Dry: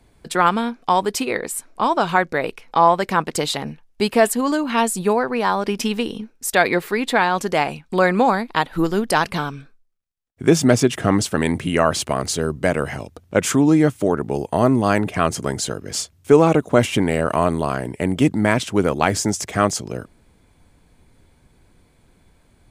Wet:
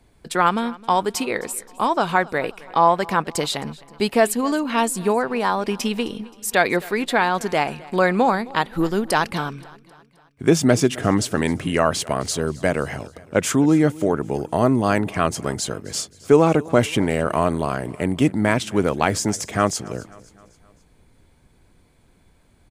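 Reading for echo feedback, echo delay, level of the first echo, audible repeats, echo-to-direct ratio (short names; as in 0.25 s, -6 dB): 52%, 0.263 s, -21.5 dB, 3, -20.0 dB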